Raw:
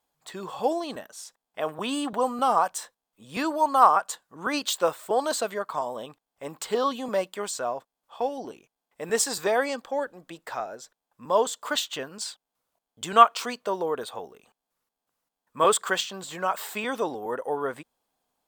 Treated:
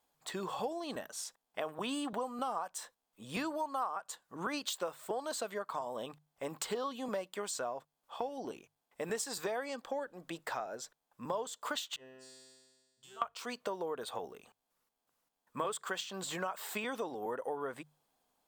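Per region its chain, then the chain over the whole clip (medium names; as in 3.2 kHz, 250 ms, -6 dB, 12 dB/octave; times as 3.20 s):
11.96–13.22 s: feedback comb 130 Hz, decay 1.5 s, mix 100% + compression 1.5:1, threshold -55 dBFS + band-stop 2.3 kHz
whole clip: compression 6:1, threshold -35 dBFS; hum notches 50/100/150 Hz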